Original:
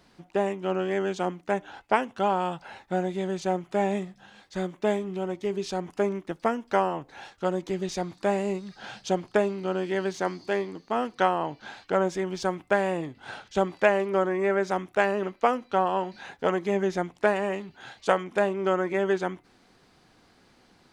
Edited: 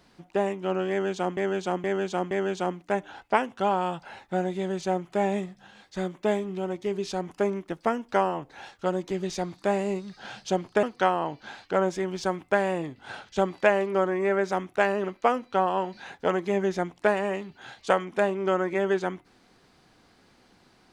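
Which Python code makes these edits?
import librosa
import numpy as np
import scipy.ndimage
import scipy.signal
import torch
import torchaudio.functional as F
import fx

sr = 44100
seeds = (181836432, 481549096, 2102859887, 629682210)

y = fx.edit(x, sr, fx.repeat(start_s=0.9, length_s=0.47, count=4),
    fx.cut(start_s=9.42, length_s=1.6), tone=tone)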